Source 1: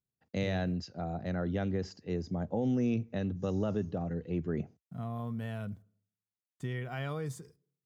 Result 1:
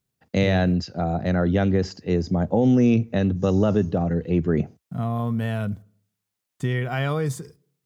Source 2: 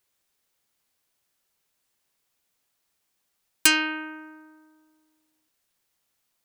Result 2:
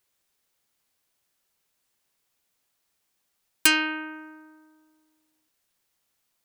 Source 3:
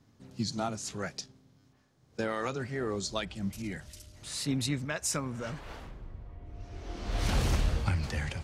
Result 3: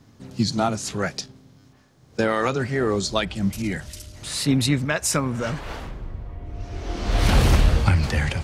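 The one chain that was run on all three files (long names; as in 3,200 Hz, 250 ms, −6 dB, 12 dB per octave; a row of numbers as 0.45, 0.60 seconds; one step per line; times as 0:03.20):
dynamic equaliser 6,500 Hz, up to −4 dB, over −50 dBFS, Q 1.3
loudness normalisation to −23 LKFS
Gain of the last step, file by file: +12.5, 0.0, +11.0 decibels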